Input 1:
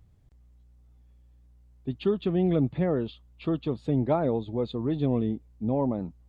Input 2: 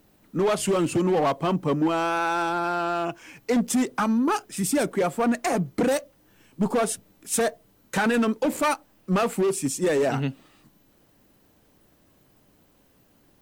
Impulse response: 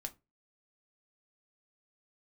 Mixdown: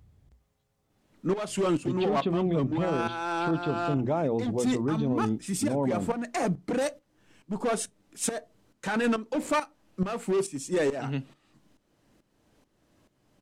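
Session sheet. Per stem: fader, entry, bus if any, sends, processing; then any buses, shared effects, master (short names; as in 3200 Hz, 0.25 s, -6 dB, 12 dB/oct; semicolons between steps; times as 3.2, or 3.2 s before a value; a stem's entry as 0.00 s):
+2.5 dB, 0.00 s, no send, HPF 43 Hz; notches 60/120/180/240/300/360 Hz
-3.0 dB, 0.90 s, send -8 dB, tremolo saw up 2.3 Hz, depth 80%; LPF 9200 Hz 12 dB/oct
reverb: on, RT60 0.25 s, pre-delay 3 ms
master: limiter -18.5 dBFS, peak gain reduction 9 dB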